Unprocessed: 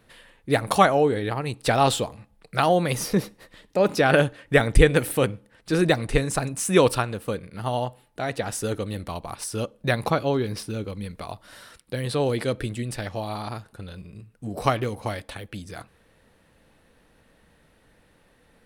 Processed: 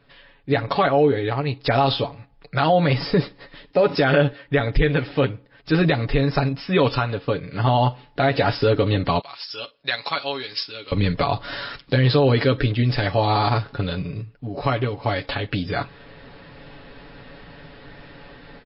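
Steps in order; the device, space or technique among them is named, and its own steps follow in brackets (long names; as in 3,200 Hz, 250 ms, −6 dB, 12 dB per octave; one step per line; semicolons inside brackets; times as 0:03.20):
0:09.19–0:10.92: first difference
comb filter 7.1 ms, depth 64%
low-bitrate web radio (automatic gain control gain up to 16 dB; brickwall limiter −8 dBFS, peak gain reduction 7.5 dB; MP3 24 kbit/s 12,000 Hz)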